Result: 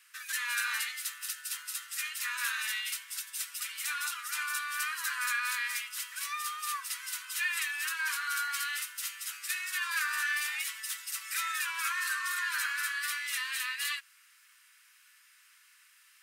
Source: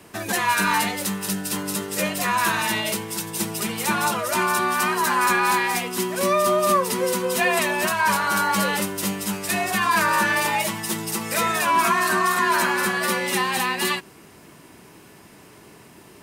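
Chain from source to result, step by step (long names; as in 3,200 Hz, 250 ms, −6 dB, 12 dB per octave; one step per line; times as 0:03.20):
Butterworth high-pass 1,300 Hz 48 dB per octave
level −8.5 dB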